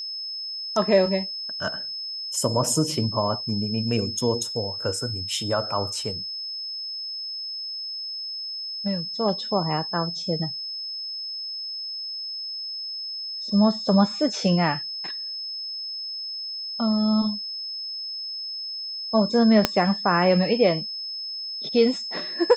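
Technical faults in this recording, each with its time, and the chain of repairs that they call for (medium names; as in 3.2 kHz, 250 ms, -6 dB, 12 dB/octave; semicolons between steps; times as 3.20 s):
whine 5.2 kHz -30 dBFS
19.65 s: pop -2 dBFS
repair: de-click; band-stop 5.2 kHz, Q 30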